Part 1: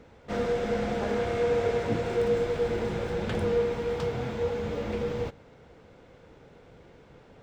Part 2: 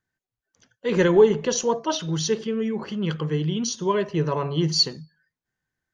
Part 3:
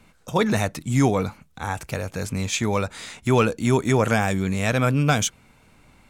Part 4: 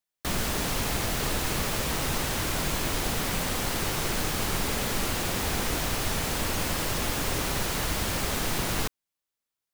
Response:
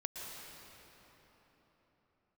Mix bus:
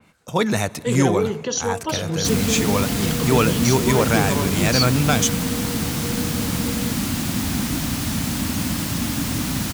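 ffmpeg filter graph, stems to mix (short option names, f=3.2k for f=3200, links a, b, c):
-filter_complex "[0:a]alimiter=limit=-24dB:level=0:latency=1,adelay=1650,volume=-2.5dB[a];[1:a]alimiter=limit=-15.5dB:level=0:latency=1:release=96,volume=0dB[b];[2:a]volume=0dB,asplit=2[c][d];[d]volume=-18dB[e];[3:a]lowshelf=f=330:t=q:w=3:g=8,adelay=2000,volume=0dB[f];[4:a]atrim=start_sample=2205[g];[e][g]afir=irnorm=-1:irlink=0[h];[a][b][c][f][h]amix=inputs=5:normalize=0,highpass=73,adynamicequalizer=threshold=0.0112:dfrequency=3400:dqfactor=0.7:tfrequency=3400:tqfactor=0.7:attack=5:release=100:ratio=0.375:range=2:mode=boostabove:tftype=highshelf"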